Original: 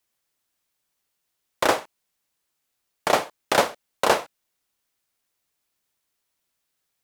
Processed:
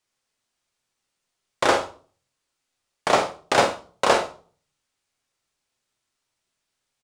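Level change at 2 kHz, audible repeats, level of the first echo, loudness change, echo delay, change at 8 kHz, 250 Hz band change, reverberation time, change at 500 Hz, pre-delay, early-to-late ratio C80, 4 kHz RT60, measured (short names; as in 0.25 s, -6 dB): +1.5 dB, 1, -8.0 dB, +1.5 dB, 47 ms, 0.0 dB, +1.5 dB, 0.40 s, +1.5 dB, 7 ms, 17.0 dB, 0.35 s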